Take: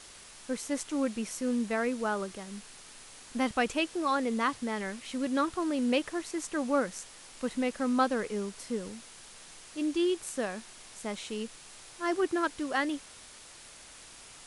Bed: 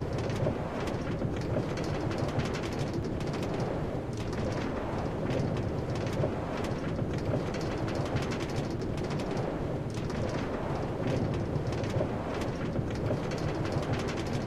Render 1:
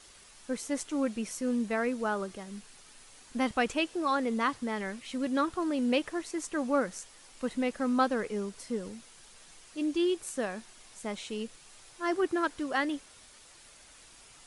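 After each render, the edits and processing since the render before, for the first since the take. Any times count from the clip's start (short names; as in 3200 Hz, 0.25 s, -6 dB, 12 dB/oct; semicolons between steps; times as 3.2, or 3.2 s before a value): denoiser 6 dB, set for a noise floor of -51 dBFS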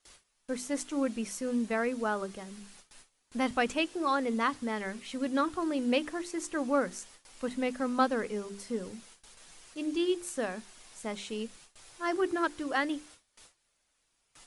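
notches 50/100/150/200/250/300/350/400 Hz; gate with hold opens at -43 dBFS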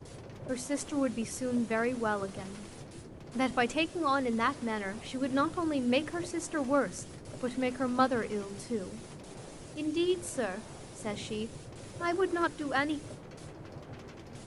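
add bed -15 dB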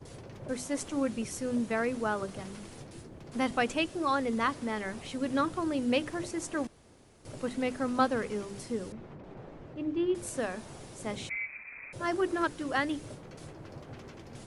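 6.67–7.25 room tone; 8.92–10.15 LPF 1800 Hz; 11.29–11.93 inverted band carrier 2500 Hz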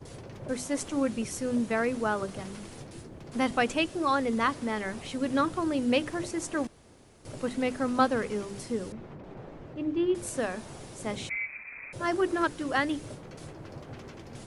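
gain +2.5 dB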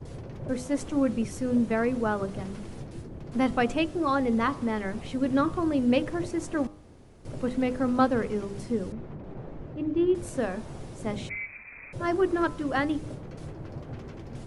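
tilt -2 dB/oct; de-hum 101.3 Hz, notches 13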